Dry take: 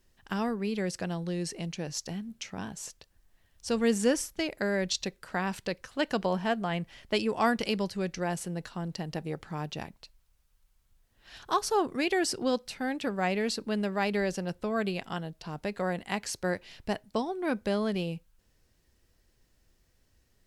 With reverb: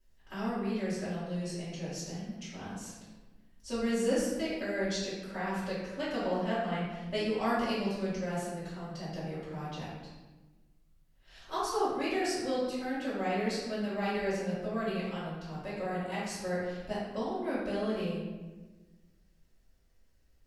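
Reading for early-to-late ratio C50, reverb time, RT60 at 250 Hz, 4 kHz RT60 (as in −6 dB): −1.0 dB, 1.3 s, 1.7 s, 0.85 s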